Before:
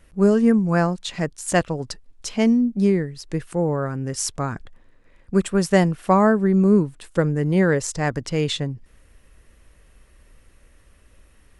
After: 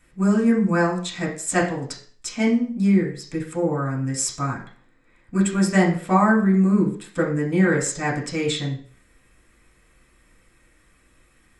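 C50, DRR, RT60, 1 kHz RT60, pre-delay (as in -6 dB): 7.5 dB, -4.5 dB, 0.45 s, 0.45 s, 3 ms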